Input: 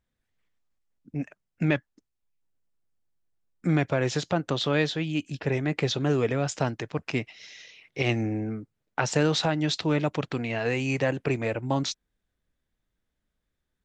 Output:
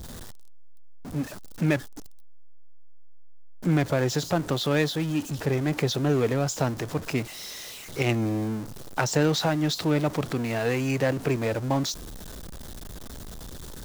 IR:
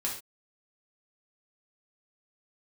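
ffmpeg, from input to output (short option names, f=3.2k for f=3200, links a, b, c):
-filter_complex "[0:a]aeval=exprs='val(0)+0.5*0.0251*sgn(val(0))':c=same,acrossover=split=2900[a][b];[a]adynamicsmooth=sensitivity=4:basefreq=940[c];[c][b]amix=inputs=2:normalize=0"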